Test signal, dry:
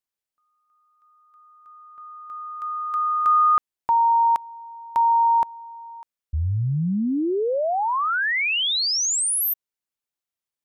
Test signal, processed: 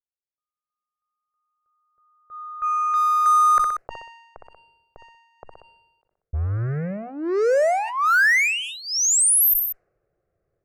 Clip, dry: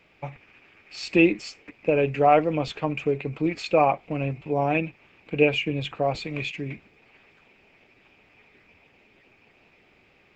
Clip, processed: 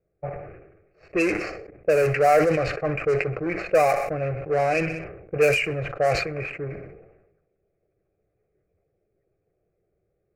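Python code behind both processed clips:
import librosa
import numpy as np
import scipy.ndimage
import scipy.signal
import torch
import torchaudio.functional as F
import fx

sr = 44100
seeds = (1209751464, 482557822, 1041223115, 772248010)

p1 = fx.fuzz(x, sr, gain_db=30.0, gate_db=-38.0)
p2 = x + (p1 * librosa.db_to_amplitude(-6.5))
p3 = fx.low_shelf(p2, sr, hz=320.0, db=-6.5)
p4 = fx.fixed_phaser(p3, sr, hz=930.0, stages=6)
p5 = fx.env_lowpass(p4, sr, base_hz=340.0, full_db=-15.5)
p6 = fx.echo_feedback(p5, sr, ms=62, feedback_pct=43, wet_db=-22)
y = fx.sustainer(p6, sr, db_per_s=54.0)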